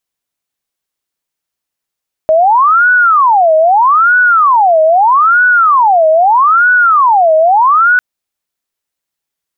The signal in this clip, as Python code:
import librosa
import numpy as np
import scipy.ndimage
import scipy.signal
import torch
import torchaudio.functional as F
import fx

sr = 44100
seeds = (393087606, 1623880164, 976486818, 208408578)

y = fx.siren(sr, length_s=5.7, kind='wail', low_hz=629.0, high_hz=1480.0, per_s=0.79, wave='sine', level_db=-4.5)